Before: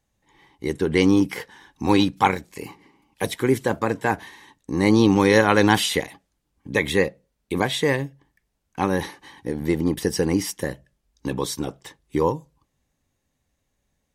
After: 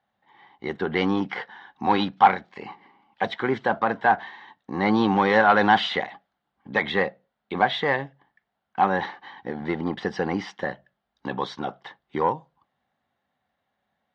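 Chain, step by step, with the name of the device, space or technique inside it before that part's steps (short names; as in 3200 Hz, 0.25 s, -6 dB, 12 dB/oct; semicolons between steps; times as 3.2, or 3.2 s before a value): overdrive pedal into a guitar cabinet (overdrive pedal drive 14 dB, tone 6700 Hz, clips at -2.5 dBFS; speaker cabinet 90–3500 Hz, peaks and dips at 210 Hz +6 dB, 300 Hz -5 dB, 460 Hz -4 dB, 740 Hz +9 dB, 1400 Hz +4 dB, 2500 Hz -8 dB); gain -5.5 dB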